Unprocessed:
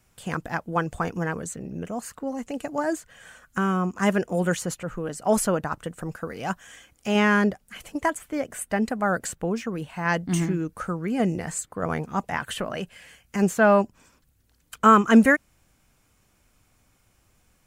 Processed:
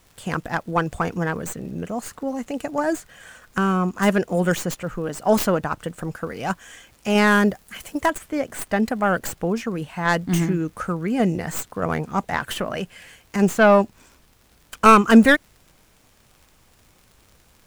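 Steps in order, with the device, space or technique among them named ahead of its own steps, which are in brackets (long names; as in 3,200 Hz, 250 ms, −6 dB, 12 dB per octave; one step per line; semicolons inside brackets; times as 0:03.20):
record under a worn stylus (stylus tracing distortion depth 0.13 ms; surface crackle; pink noise bed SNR 37 dB)
0:07.27–0:08.06: high-shelf EQ 9,700 Hz +8.5 dB
level +3.5 dB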